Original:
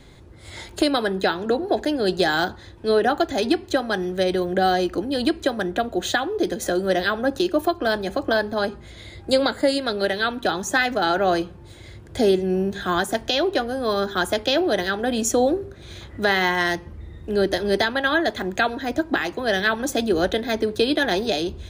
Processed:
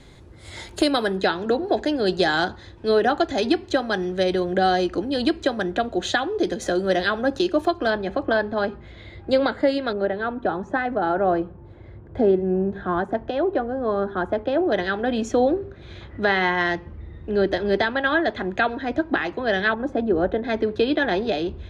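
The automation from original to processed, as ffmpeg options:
ffmpeg -i in.wav -af "asetnsamples=nb_out_samples=441:pad=0,asendcmd='1.17 lowpass f 6400;7.9 lowpass f 2800;9.93 lowpass f 1200;14.72 lowpass f 3000;19.74 lowpass f 1200;20.44 lowpass f 2700',lowpass=12000" out.wav

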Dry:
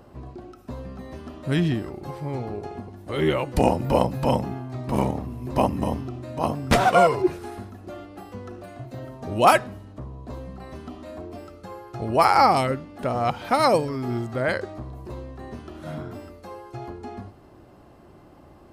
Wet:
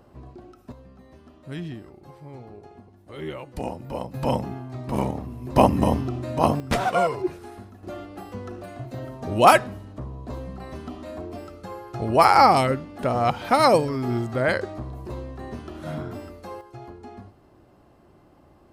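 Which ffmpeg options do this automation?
ffmpeg -i in.wav -af "asetnsamples=nb_out_samples=441:pad=0,asendcmd='0.72 volume volume -11.5dB;4.14 volume volume -2dB;5.56 volume volume 5dB;6.6 volume volume -5dB;7.83 volume volume 2dB;16.61 volume volume -5dB',volume=-4dB" out.wav

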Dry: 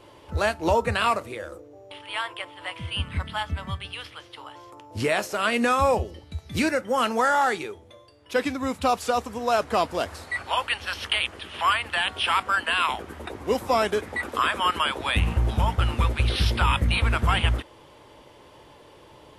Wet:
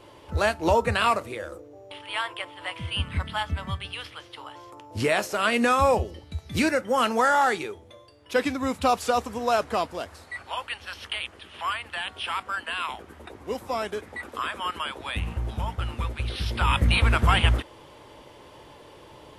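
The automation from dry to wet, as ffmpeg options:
ffmpeg -i in.wav -af "volume=9.5dB,afade=type=out:start_time=9.42:duration=0.61:silence=0.421697,afade=type=in:start_time=16.46:duration=0.4:silence=0.354813" out.wav

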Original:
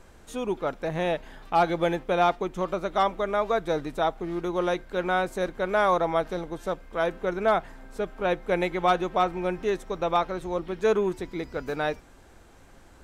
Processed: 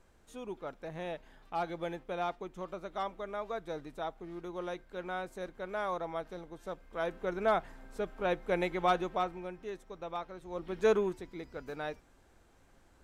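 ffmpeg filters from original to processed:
ffmpeg -i in.wav -af "volume=5.5dB,afade=type=in:start_time=6.55:duration=0.93:silence=0.446684,afade=type=out:start_time=8.96:duration=0.54:silence=0.354813,afade=type=in:start_time=10.45:duration=0.42:silence=0.266073,afade=type=out:start_time=10.87:duration=0.35:silence=0.421697" out.wav

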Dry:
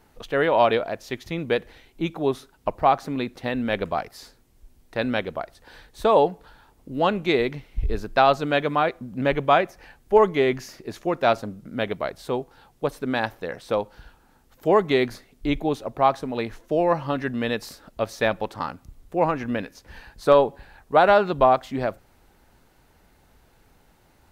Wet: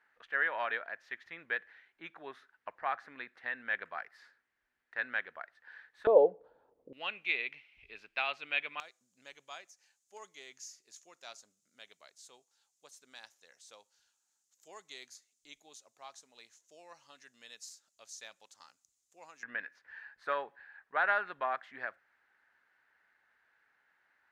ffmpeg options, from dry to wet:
ffmpeg -i in.wav -af "asetnsamples=nb_out_samples=441:pad=0,asendcmd='6.07 bandpass f 500;6.93 bandpass f 2500;8.8 bandpass f 6800;19.43 bandpass f 1700',bandpass=frequency=1700:width_type=q:width=4.7:csg=0" out.wav

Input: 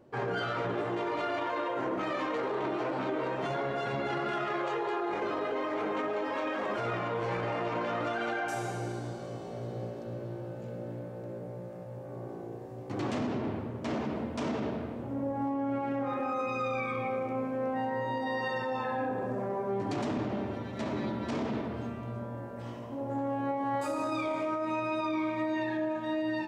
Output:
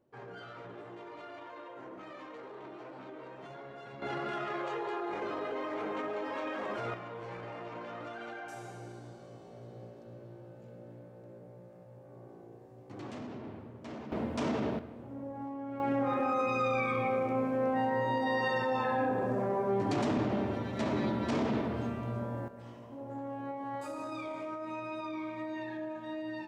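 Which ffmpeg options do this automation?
ffmpeg -i in.wav -af "asetnsamples=nb_out_samples=441:pad=0,asendcmd='4.02 volume volume -4dB;6.94 volume volume -10.5dB;14.12 volume volume 0.5dB;14.79 volume volume -8.5dB;15.8 volume volume 2dB;22.48 volume volume -7.5dB',volume=-14.5dB" out.wav

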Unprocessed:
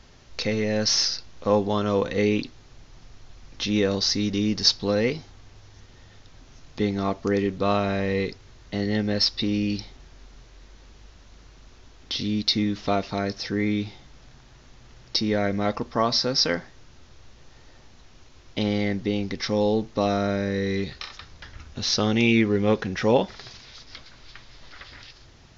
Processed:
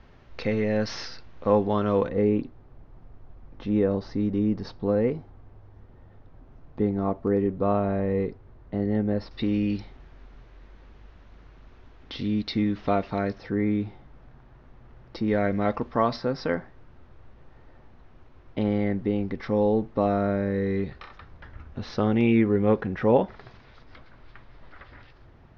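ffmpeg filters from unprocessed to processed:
ffmpeg -i in.wav -af "asetnsamples=nb_out_samples=441:pad=0,asendcmd='2.09 lowpass f 1000;9.31 lowpass f 2100;13.38 lowpass f 1400;15.28 lowpass f 2200;16.16 lowpass f 1500',lowpass=2100" out.wav

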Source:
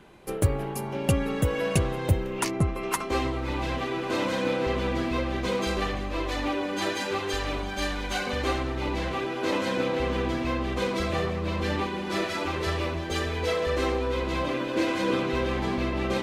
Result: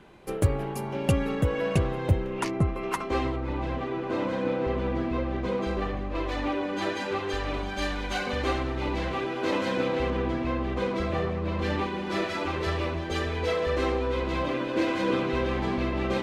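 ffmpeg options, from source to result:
ffmpeg -i in.wav -af "asetnsamples=nb_out_samples=441:pad=0,asendcmd='1.35 lowpass f 2600;3.36 lowpass f 1100;6.15 lowpass f 2500;7.54 lowpass f 4700;10.1 lowpass f 1800;11.59 lowpass f 3900',lowpass=frequency=5800:poles=1" out.wav

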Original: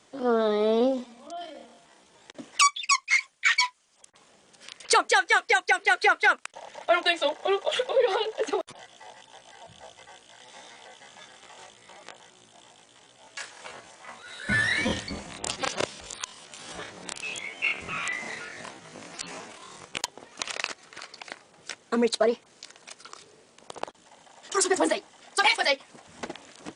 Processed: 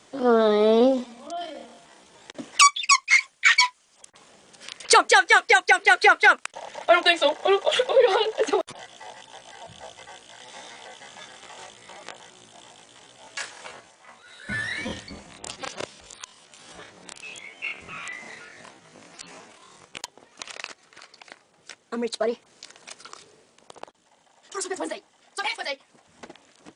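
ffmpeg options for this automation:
ffmpeg -i in.wav -af "volume=13dB,afade=type=out:start_time=13.44:duration=0.49:silence=0.316228,afade=type=in:start_time=22.03:duration=0.92:silence=0.398107,afade=type=out:start_time=22.95:duration=0.91:silence=0.316228" out.wav

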